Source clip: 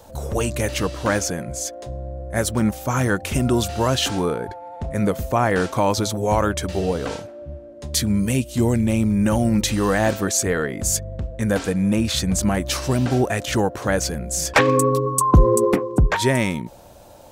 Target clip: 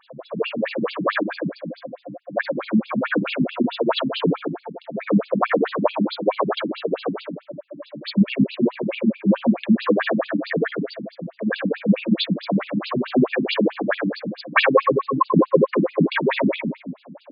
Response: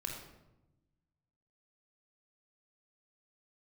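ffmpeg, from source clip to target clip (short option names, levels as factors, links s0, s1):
-filter_complex "[0:a]asettb=1/sr,asplit=3[s0][s1][s2];[s0]atrim=end=13.134[s3];[s1]atrim=start=13.13:end=14.1,asetpts=PTS-STARTPTS,afade=t=in:d=0.004:c=qsin,afade=t=out:st=0.966:d=0.004:c=qsin,highpass=f=110:w=0.5412,highpass=f=110:w=1.3066[s4];[s2]atrim=start=14.096[s5];[s3][s4]acrossfade=d=0.004:c1=hsin:c2=qsin[s6];[s6][s5]acrossfade=d=0.004:c1=qsin:c2=hsin[s7];[1:a]atrim=start_sample=2205[s8];[s7][s8]afir=irnorm=-1:irlink=0,afftfilt=real='re*between(b*sr/1024,200*pow(3600/200,0.5+0.5*sin(2*PI*4.6*pts/sr))/1.41,200*pow(3600/200,0.5+0.5*sin(2*PI*4.6*pts/sr))*1.41)':imag='im*between(b*sr/1024,200*pow(3600/200,0.5+0.5*sin(2*PI*4.6*pts/sr))/1.41,200*pow(3600/200,0.5+0.5*sin(2*PI*4.6*pts/sr))*1.41)':win_size=1024:overlap=0.75,volume=2.37"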